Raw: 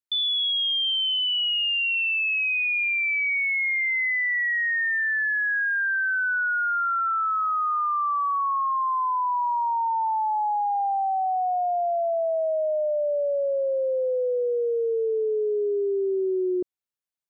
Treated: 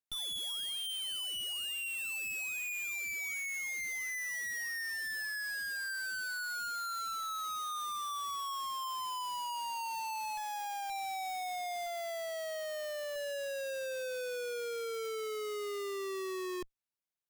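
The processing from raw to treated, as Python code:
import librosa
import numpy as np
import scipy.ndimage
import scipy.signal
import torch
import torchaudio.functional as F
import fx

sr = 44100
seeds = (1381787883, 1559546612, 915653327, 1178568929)

y = fx.halfwave_hold(x, sr)
y = fx.tilt_eq(y, sr, slope=4.0, at=(11.86, 13.16))
y = np.clip(y, -10.0 ** (-16.0 / 20.0), 10.0 ** (-16.0 / 20.0))
y = fx.graphic_eq_15(y, sr, hz=(250, 630, 1600), db=(-6, 9, -8), at=(10.37, 10.9))
y = fx.tube_stage(y, sr, drive_db=38.0, bias=0.8)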